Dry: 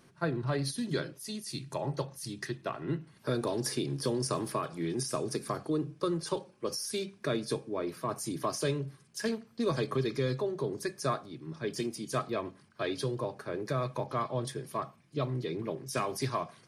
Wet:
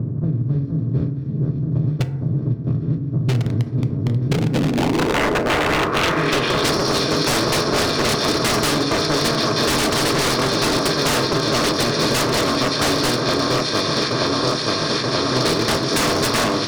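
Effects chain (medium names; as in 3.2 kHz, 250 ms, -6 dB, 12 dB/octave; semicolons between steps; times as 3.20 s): spectral levelling over time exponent 0.2; 13.19–15.32 s: amplifier tone stack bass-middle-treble 10-0-10; gate -21 dBFS, range -17 dB; echo whose repeats swap between lows and highs 465 ms, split 1.6 kHz, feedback 83%, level -6 dB; hard clipper -21.5 dBFS, distortion -15 dB; low-pass sweep 110 Hz -> 4.7 kHz, 4.23–6.77 s; wavefolder -27 dBFS; level rider gain up to 6.5 dB; FDN reverb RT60 0.87 s, high-frequency decay 0.35×, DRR 8.5 dB; three bands compressed up and down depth 100%; trim +7 dB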